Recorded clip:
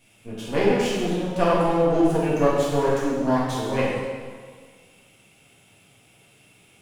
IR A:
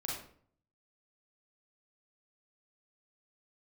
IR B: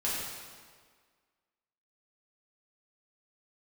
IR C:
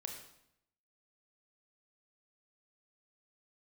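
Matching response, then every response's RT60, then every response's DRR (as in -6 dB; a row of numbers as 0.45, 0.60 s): B; 0.55, 1.7, 0.75 s; -4.0, -8.5, 2.5 dB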